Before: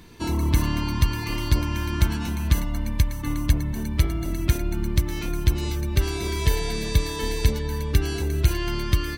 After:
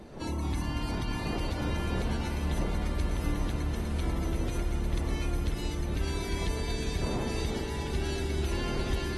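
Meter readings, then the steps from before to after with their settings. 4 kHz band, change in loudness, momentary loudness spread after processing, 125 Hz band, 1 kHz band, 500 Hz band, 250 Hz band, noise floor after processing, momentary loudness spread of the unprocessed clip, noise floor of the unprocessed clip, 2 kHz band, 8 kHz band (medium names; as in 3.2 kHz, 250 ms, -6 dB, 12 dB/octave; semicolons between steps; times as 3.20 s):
-7.0 dB, -7.5 dB, 2 LU, -8.5 dB, -4.0 dB, -4.0 dB, -5.5 dB, -35 dBFS, 4 LU, -30 dBFS, -6.0 dB, -9.0 dB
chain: wind noise 360 Hz -31 dBFS; peak limiter -16 dBFS, peak gain reduction 10.5 dB; ever faster or slower copies 178 ms, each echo -3 st, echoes 3, each echo -6 dB; on a send: echo with a slow build-up 135 ms, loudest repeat 8, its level -16 dB; on the sum: trim -8.5 dB; AAC 32 kbps 48 kHz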